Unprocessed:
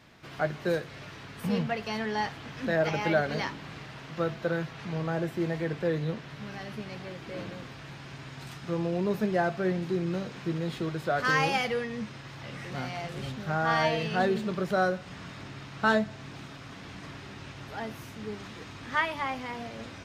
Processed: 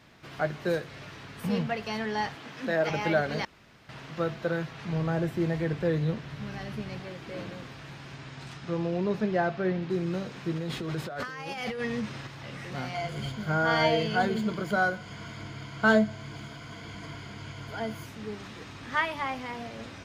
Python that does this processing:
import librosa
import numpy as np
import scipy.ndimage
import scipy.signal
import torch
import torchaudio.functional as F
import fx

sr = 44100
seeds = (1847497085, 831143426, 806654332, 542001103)

y = fx.highpass(x, sr, hz=190.0, slope=12, at=(2.35, 2.9))
y = fx.low_shelf(y, sr, hz=120.0, db=10.5, at=(4.88, 7.0))
y = fx.lowpass(y, sr, hz=fx.line((8.15, 9300.0), (9.89, 4000.0)), slope=12, at=(8.15, 9.89), fade=0.02)
y = fx.over_compress(y, sr, threshold_db=-34.0, ratio=-1.0, at=(10.55, 12.27))
y = fx.ripple_eq(y, sr, per_octave=1.8, db=11, at=(12.94, 18.06))
y = fx.edit(y, sr, fx.room_tone_fill(start_s=3.45, length_s=0.44), tone=tone)